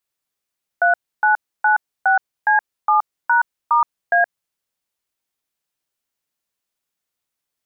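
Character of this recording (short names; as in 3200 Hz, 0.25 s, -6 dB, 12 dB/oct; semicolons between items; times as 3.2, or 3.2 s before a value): noise floor -82 dBFS; spectral tilt +1.5 dB/oct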